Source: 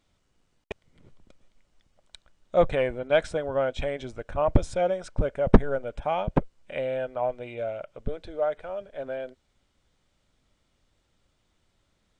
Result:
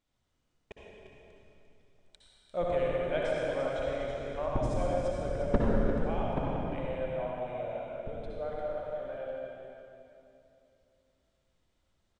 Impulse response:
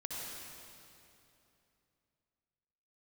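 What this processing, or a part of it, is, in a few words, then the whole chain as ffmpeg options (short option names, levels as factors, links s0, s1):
cave: -filter_complex "[0:a]aecho=1:1:348:0.335[s0];[1:a]atrim=start_sample=2205[s1];[s0][s1]afir=irnorm=-1:irlink=0,volume=0.422"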